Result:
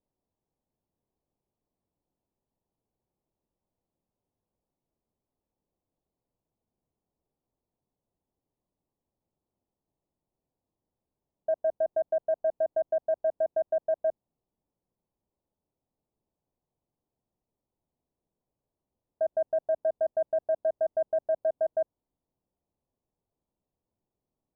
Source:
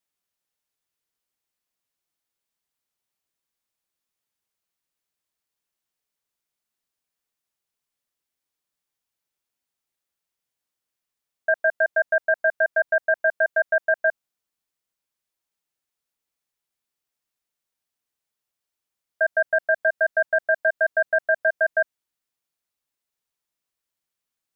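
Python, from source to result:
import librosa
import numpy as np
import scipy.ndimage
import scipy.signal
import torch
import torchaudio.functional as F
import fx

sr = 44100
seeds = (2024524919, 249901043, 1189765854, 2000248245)

y = fx.law_mismatch(x, sr, coded='mu')
y = scipy.signal.sosfilt(scipy.signal.butter(6, 1000.0, 'lowpass', fs=sr, output='sos'), y)
y = fx.tilt_shelf(y, sr, db=7.5, hz=710.0)
y = y * librosa.db_to_amplitude(-4.5)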